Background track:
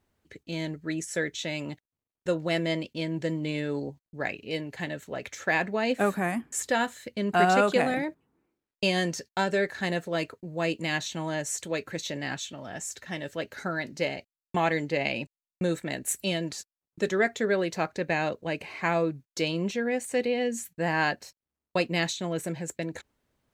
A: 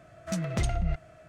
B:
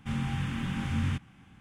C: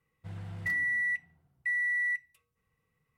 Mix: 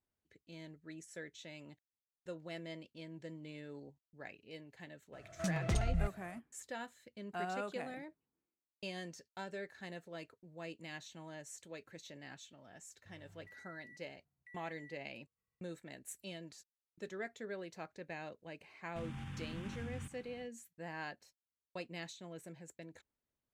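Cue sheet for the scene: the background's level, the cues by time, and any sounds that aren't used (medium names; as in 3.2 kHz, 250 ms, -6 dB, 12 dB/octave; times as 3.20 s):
background track -18.5 dB
5.12 s: add A -5.5 dB, fades 0.02 s
12.81 s: add C -16 dB + compression 12:1, threshold -40 dBFS
18.90 s: add B -4 dB, fades 0.10 s + compression, threshold -38 dBFS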